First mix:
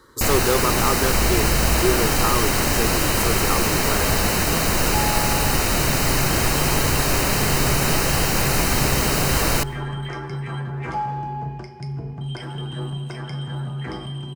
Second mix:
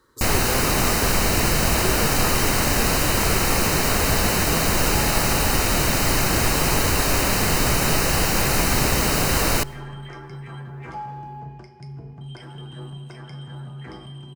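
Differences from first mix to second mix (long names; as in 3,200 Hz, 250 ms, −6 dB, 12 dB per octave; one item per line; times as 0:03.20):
speech −9.5 dB
second sound −7.5 dB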